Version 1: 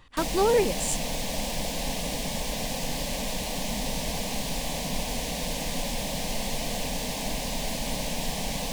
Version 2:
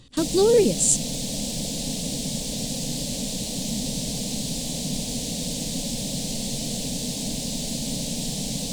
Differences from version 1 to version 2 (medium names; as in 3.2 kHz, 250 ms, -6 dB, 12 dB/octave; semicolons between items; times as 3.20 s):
background -5.0 dB; master: add graphic EQ 125/250/500/1000/2000/4000/8000 Hz +10/+9/+4/-9/-6/+8/+11 dB